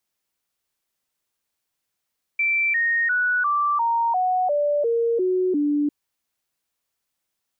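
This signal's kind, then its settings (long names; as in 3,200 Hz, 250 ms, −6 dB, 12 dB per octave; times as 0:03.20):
stepped sweep 2,340 Hz down, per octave 3, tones 10, 0.35 s, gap 0.00 s −18 dBFS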